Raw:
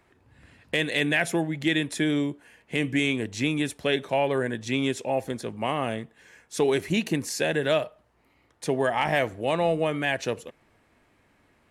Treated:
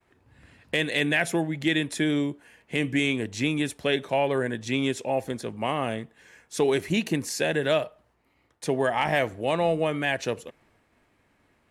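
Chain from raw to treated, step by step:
downward expander −60 dBFS

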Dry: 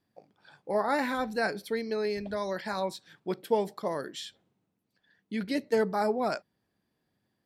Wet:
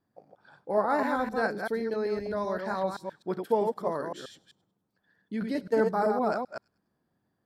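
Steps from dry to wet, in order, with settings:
delay that plays each chunk backwards 129 ms, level −4.5 dB
high shelf with overshoot 1,800 Hz −7 dB, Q 1.5
delay with a high-pass on its return 100 ms, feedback 35%, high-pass 2,900 Hz, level −22 dB

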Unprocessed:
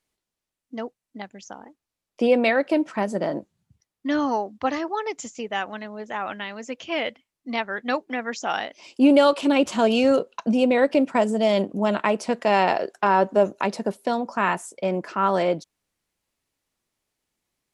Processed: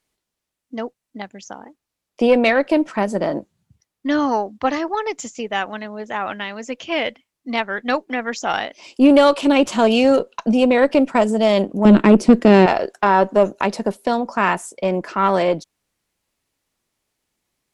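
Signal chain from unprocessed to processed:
0:11.85–0:12.66: low shelf with overshoot 480 Hz +12.5 dB, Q 1.5
tube saturation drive 8 dB, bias 0.35
level +5.5 dB

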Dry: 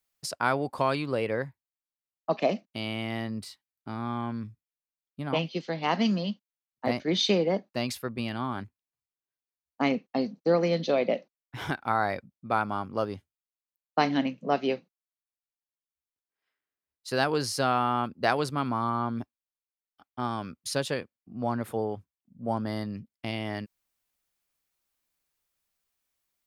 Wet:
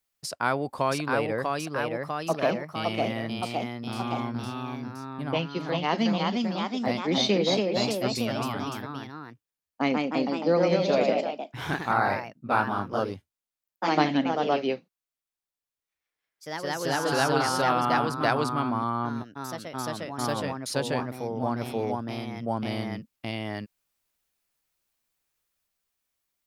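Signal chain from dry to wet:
delay with pitch and tempo change per echo 690 ms, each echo +1 semitone, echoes 3

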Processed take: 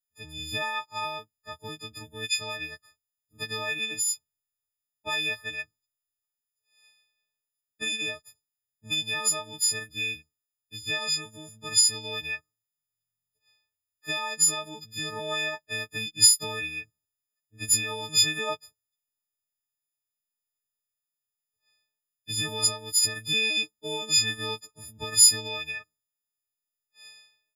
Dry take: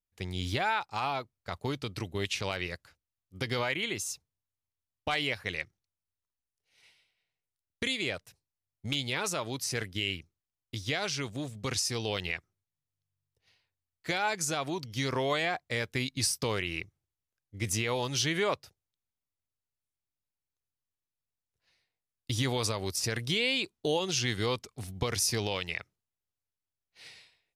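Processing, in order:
every partial snapped to a pitch grid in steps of 6 semitones
expander for the loud parts 1.5 to 1, over −32 dBFS

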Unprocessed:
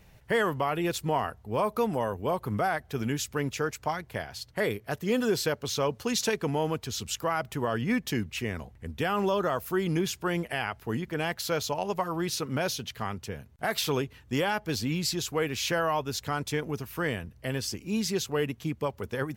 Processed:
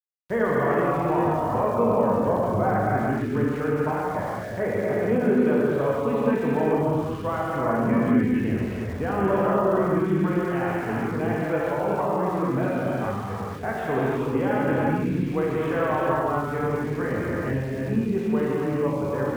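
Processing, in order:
Gaussian smoothing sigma 4.7 samples
reverb whose tail is shaped and stops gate 490 ms flat, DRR −7 dB
centre clipping without the shift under −41 dBFS

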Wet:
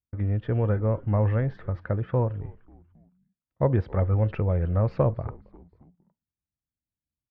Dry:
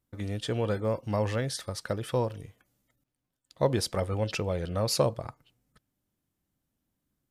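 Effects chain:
low-pass filter 2,000 Hz 24 dB per octave
noise gate with hold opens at −46 dBFS
parametric band 68 Hz +12.5 dB 2.2 octaves
on a send: echo with shifted repeats 270 ms, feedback 52%, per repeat −96 Hz, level −23 dB

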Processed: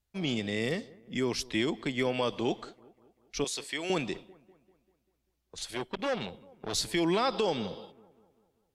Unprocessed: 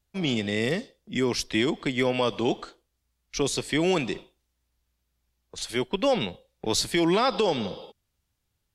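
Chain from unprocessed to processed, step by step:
0:03.44–0:03.90: high-pass filter 1,000 Hz 6 dB per octave
delay with a low-pass on its return 196 ms, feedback 52%, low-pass 1,500 Hz, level −22.5 dB
0:05.69–0:06.74: saturating transformer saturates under 1,300 Hz
level −5 dB

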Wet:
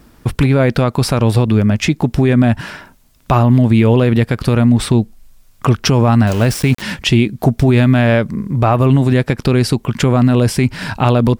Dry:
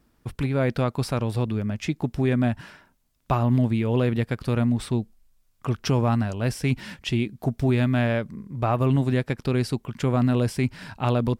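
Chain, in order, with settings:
in parallel at −0.5 dB: downward compressor, threshold −35 dBFS, peak gain reduction 17 dB
0:06.27–0:06.82: on the sum: centre clipping without the shift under −34.5 dBFS
boost into a limiter +14.5 dB
level −2 dB

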